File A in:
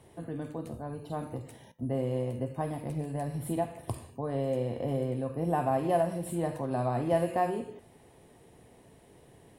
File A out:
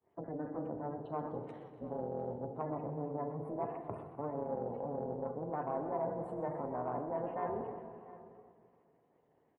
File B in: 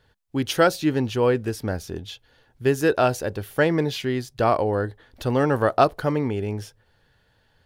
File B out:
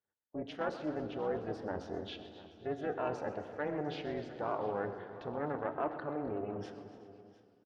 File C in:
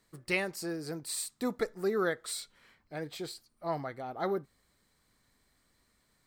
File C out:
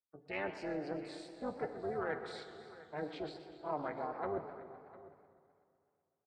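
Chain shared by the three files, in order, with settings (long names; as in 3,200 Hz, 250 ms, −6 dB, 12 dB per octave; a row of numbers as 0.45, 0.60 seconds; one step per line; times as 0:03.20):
downward expander −45 dBFS
reversed playback
downward compressor 5 to 1, threshold −35 dBFS
reversed playback
gate on every frequency bin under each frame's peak −25 dB strong
soft clipping −27 dBFS
amplitude modulation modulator 300 Hz, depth 80%
high-pass filter 570 Hz 6 dB per octave
head-to-tape spacing loss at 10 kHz 39 dB
on a send: multi-tap delay 284/703 ms −18/−18.5 dB
on the sum: feedback delay network reverb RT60 2 s, low-frequency decay 1.3×, high-frequency decay 0.8×, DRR 10.5 dB
feedback echo with a swinging delay time 126 ms, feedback 71%, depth 177 cents, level −14.5 dB
level +10.5 dB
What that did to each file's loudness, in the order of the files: −7.5, −15.5, −6.5 LU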